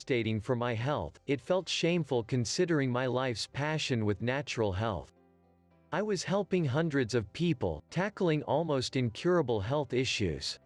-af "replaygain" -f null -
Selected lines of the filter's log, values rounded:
track_gain = +12.1 dB
track_peak = 0.088